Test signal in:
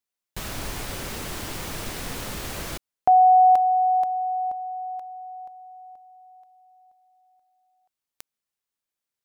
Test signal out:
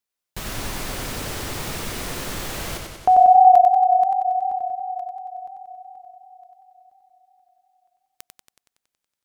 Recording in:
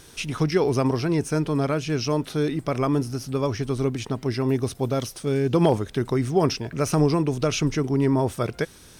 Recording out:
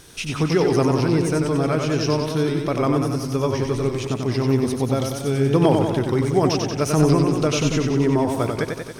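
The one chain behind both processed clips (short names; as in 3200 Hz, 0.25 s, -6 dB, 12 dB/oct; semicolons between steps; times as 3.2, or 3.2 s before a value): warbling echo 93 ms, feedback 64%, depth 78 cents, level -4.5 dB; gain +1.5 dB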